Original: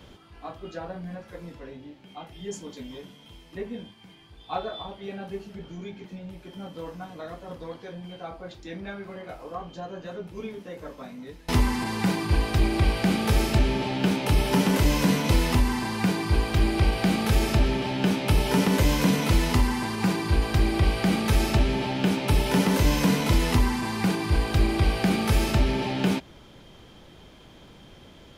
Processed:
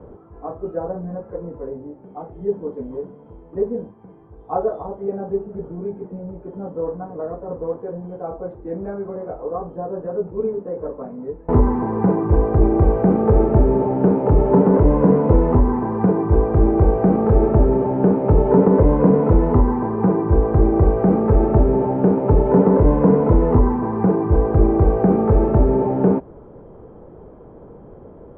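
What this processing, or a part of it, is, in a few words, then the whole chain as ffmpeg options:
under water: -af "lowpass=frequency=1100:width=0.5412,lowpass=frequency=1100:width=1.3066,equalizer=frequency=450:width_type=o:width=0.53:gain=10,volume=6.5dB"

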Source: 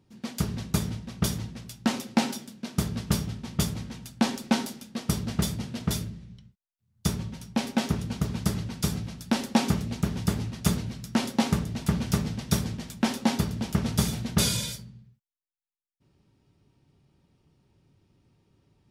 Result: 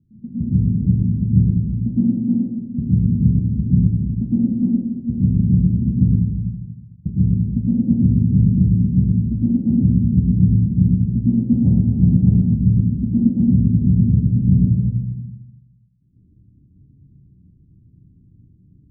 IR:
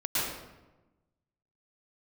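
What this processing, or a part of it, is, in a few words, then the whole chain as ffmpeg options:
club heard from the street: -filter_complex "[0:a]alimiter=limit=-14dB:level=0:latency=1:release=323,lowpass=frequency=240:width=0.5412,lowpass=frequency=240:width=1.3066[link_01];[1:a]atrim=start_sample=2205[link_02];[link_01][link_02]afir=irnorm=-1:irlink=0,asplit=3[link_03][link_04][link_05];[link_03]afade=type=out:start_time=11.64:duration=0.02[link_06];[link_04]equalizer=frequency=810:width_type=o:width=1.2:gain=13.5,afade=type=in:start_time=11.64:duration=0.02,afade=type=out:start_time=12.55:duration=0.02[link_07];[link_05]afade=type=in:start_time=12.55:duration=0.02[link_08];[link_06][link_07][link_08]amix=inputs=3:normalize=0,volume=6dB"

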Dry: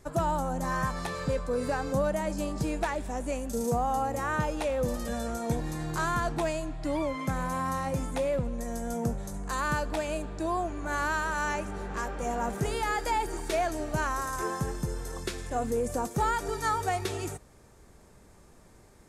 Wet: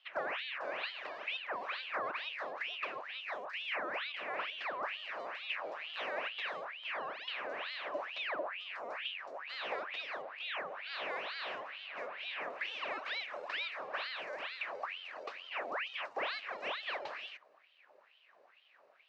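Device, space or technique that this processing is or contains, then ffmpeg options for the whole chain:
voice changer toy: -af "aeval=exprs='val(0)*sin(2*PI*1800*n/s+1800*0.75/2.2*sin(2*PI*2.2*n/s))':channel_layout=same,highpass=590,equalizer=frequency=590:width_type=q:width=4:gain=6,equalizer=frequency=890:width_type=q:width=4:gain=-4,equalizer=frequency=1400:width_type=q:width=4:gain=-5,equalizer=frequency=2100:width_type=q:width=4:gain=-4,equalizer=frequency=3300:width_type=q:width=4:gain=-7,lowpass=frequency=3600:width=0.5412,lowpass=frequency=3600:width=1.3066,volume=-3.5dB"

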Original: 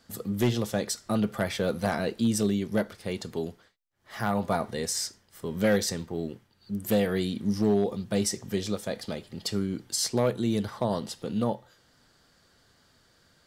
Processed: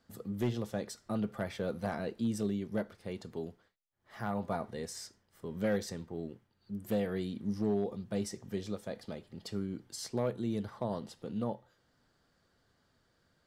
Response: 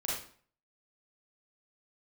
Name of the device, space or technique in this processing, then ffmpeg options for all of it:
behind a face mask: -af "highshelf=frequency=2400:gain=-8,volume=-7.5dB"

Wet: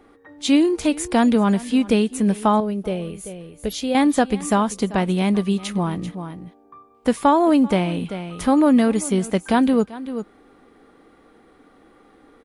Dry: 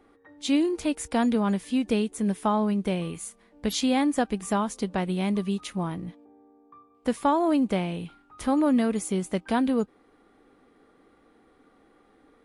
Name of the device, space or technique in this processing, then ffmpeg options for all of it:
ducked delay: -filter_complex "[0:a]asplit=3[link_01][link_02][link_03];[link_02]adelay=389,volume=-8.5dB[link_04];[link_03]apad=whole_len=565808[link_05];[link_04][link_05]sidechaincompress=threshold=-35dB:ratio=8:attack=41:release=374[link_06];[link_01][link_06]amix=inputs=2:normalize=0,asettb=1/sr,asplit=3[link_07][link_08][link_09];[link_07]atrim=end=2.604[link_10];[link_08]atrim=start=2.6:end=3.95,asetpts=PTS-STARTPTS,afade=type=in:duration=0.004:curve=qsin,afade=type=out:start_time=1.346:duration=0.004:curve=qsin,equalizer=frequency=125:width_type=o:width=1:gain=-4,equalizer=frequency=250:width_type=o:width=1:gain=-8,equalizer=frequency=500:width_type=o:width=1:gain=3,equalizer=frequency=1000:width_type=o:width=1:gain=-11,equalizer=frequency=2000:width_type=o:width=1:gain=-6,equalizer=frequency=4000:width_type=o:width=1:gain=-5,equalizer=frequency=8000:width_type=o:width=1:gain=-9[link_11];[link_09]atrim=start=3.946[link_12];[link_10][link_11]acrossfade=duration=0.004:curve1=hsin:curve2=qsin[link_13];[link_13][link_12]acrossfade=duration=0.004:curve1=qsin:curve2=hsin,volume=7dB"

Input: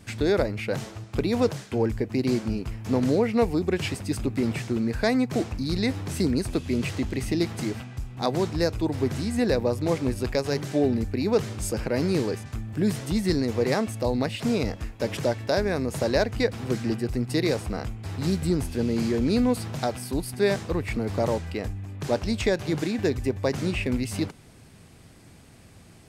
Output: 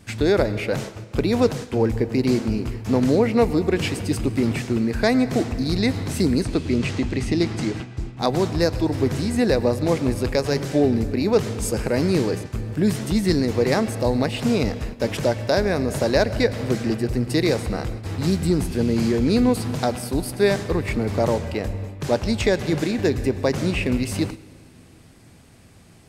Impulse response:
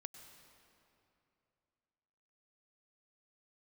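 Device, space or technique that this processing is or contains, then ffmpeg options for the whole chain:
keyed gated reverb: -filter_complex "[0:a]asettb=1/sr,asplit=3[link_01][link_02][link_03];[link_01]atrim=end=6.434[link_04];[link_02]atrim=start=6.43:end=8.19,asetpts=PTS-STARTPTS,afade=type=in:duration=0.004:curve=qsin,afade=type=out:start_time=1.756:duration=0.004:curve=qsin,lowpass=7500[link_05];[link_03]atrim=start=8.186[link_06];[link_04][link_05]acrossfade=duration=0.004:curve1=hsin:curve2=qsin[link_07];[link_07][link_06]acrossfade=duration=0.004:curve1=qsin:curve2=hsin,asplit=3[link_08][link_09][link_10];[1:a]atrim=start_sample=2205[link_11];[link_09][link_11]afir=irnorm=-1:irlink=0[link_12];[link_10]apad=whole_len=1150418[link_13];[link_12][link_13]sidechaingate=range=-9dB:threshold=-36dB:ratio=16:detection=peak,volume=6dB[link_14];[link_08][link_14]amix=inputs=2:normalize=0,volume=-2dB"

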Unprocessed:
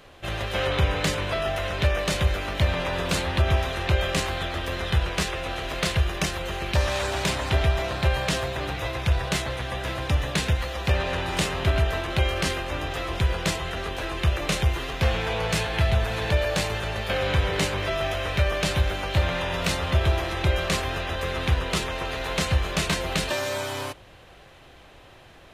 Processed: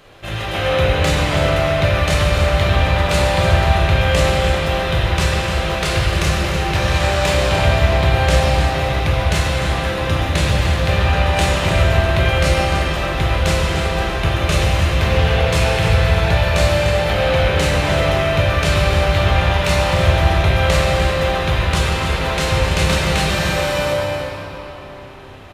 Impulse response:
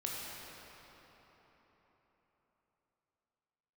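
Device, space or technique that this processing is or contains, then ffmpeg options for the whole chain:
cave: -filter_complex "[0:a]aecho=1:1:299:0.316[link_01];[1:a]atrim=start_sample=2205[link_02];[link_01][link_02]afir=irnorm=-1:irlink=0,volume=5.5dB"

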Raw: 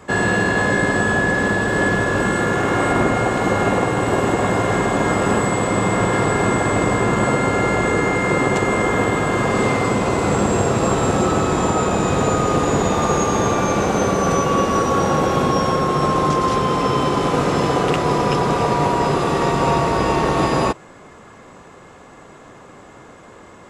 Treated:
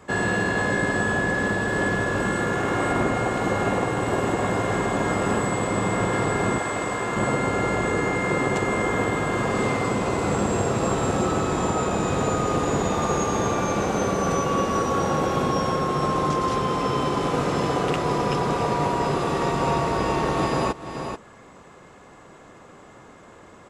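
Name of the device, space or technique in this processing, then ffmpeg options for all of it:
ducked delay: -filter_complex "[0:a]asplit=3[link_01][link_02][link_03];[link_02]adelay=435,volume=-7.5dB[link_04];[link_03]apad=whole_len=1064322[link_05];[link_04][link_05]sidechaincompress=threshold=-34dB:ratio=3:attack=44:release=206[link_06];[link_01][link_06]amix=inputs=2:normalize=0,asettb=1/sr,asplit=3[link_07][link_08][link_09];[link_07]atrim=end=6.584[link_10];[link_08]atrim=start=6.58:end=7.16,asetpts=PTS-STARTPTS,afade=type=in:duration=0.004:curve=qsin,afade=type=out:start_time=0.576:duration=0.004:curve=qsin,lowshelf=frequency=350:gain=-10[link_11];[link_09]atrim=start=7.156[link_12];[link_10][link_11]acrossfade=duration=0.004:curve1=hsin:curve2=qsin[link_13];[link_13][link_12]acrossfade=duration=0.004:curve1=qsin:curve2=hsin,volume=-5.5dB"

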